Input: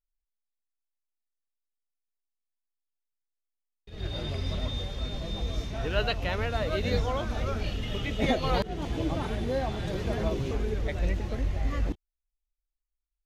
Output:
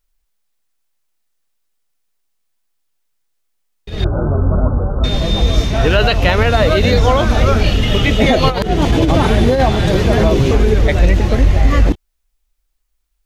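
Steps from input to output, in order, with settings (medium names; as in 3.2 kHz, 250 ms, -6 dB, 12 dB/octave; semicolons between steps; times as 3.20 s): 4.04–5.04 s: Chebyshev low-pass 1.5 kHz, order 8; 8.48–9.65 s: compressor with a negative ratio -29 dBFS, ratio -0.5; loudness maximiser +19.5 dB; trim -1 dB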